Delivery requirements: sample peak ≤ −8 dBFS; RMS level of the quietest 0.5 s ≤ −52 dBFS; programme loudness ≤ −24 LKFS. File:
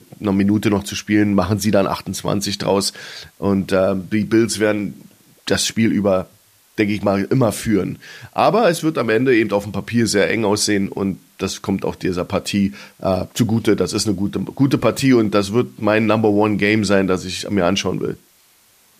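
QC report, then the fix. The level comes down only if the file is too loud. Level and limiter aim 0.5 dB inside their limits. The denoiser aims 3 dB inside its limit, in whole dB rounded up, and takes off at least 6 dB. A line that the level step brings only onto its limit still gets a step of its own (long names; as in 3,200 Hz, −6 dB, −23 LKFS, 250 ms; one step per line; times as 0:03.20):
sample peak −3.0 dBFS: out of spec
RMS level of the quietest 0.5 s −54 dBFS: in spec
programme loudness −18.0 LKFS: out of spec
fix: level −6.5 dB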